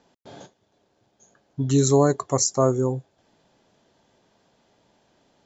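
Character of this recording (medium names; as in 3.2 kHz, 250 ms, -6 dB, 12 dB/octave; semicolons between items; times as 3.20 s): noise floor -69 dBFS; spectral tilt -5.5 dB/octave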